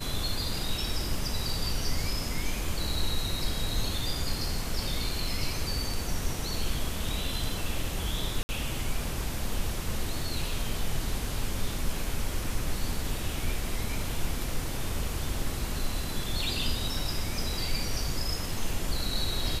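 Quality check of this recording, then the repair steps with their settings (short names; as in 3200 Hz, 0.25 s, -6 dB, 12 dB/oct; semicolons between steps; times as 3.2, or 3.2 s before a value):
8.43–8.49 gap 60 ms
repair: interpolate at 8.43, 60 ms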